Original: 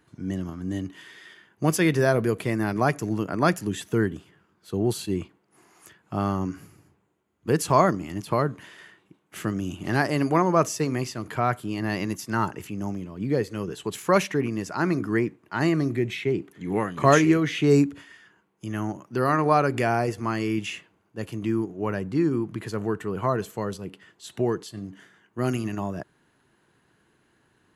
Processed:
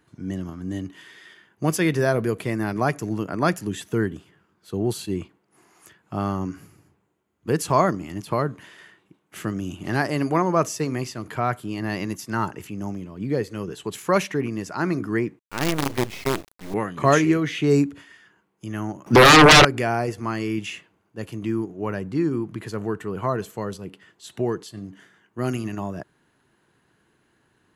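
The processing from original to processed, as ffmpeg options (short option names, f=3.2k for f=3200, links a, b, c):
-filter_complex "[0:a]asettb=1/sr,asplit=3[a][b][c];[a]atrim=end=15.394[d];[b]atrim=start=15.39:end=16.74,asetpts=PTS-STARTPTS,afade=t=in:d=0.004:c=qsin,afade=t=out:st=1.346:d=0.004:c=qsin,acrusher=bits=4:dc=4:mix=0:aa=0.000001[e];[c]atrim=start=16.736[f];[d][e]acrossfade=d=0.004:c1=hsin:c2=qsin[g];[g][f]acrossfade=d=0.004:c1=qsin:c2=hsin,asettb=1/sr,asplit=3[h][i][j];[h]atrim=end=19.064[k];[i]atrim=start=19.06:end=19.65,asetpts=PTS-STARTPTS,afade=t=in:d=0.004:c=qsin,afade=t=out:st=0.586:d=0.004:c=qsin,aeval=exprs='0.473*sin(PI/2*7.08*val(0)/0.473)':c=same[l];[j]atrim=start=19.646[m];[k][l]acrossfade=d=0.004:c1=hsin:c2=qsin[n];[n][m]acrossfade=d=0.004:c1=qsin:c2=hsin"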